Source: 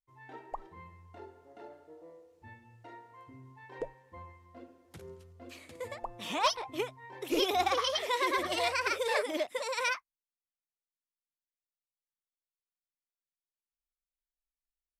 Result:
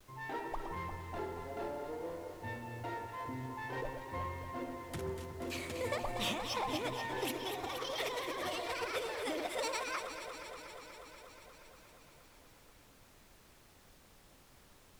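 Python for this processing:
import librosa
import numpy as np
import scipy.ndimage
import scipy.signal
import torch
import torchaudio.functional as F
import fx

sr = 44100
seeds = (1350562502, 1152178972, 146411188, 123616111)

p1 = fx.law_mismatch(x, sr, coded='mu')
p2 = fx.over_compress(p1, sr, threshold_db=-37.0, ratio=-1.0)
p3 = fx.dmg_noise_colour(p2, sr, seeds[0], colour='pink', level_db=-61.0)
p4 = p3 + fx.echo_alternate(p3, sr, ms=119, hz=1400.0, feedback_pct=87, wet_db=-7, dry=0)
p5 = fx.vibrato(p4, sr, rate_hz=0.53, depth_cents=29.0)
y = F.gain(torch.from_numpy(p5), -2.0).numpy()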